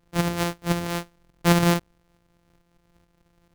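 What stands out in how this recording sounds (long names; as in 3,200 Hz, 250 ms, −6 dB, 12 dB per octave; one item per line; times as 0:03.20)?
a buzz of ramps at a fixed pitch in blocks of 256 samples
tremolo saw up 2.3 Hz, depth 40%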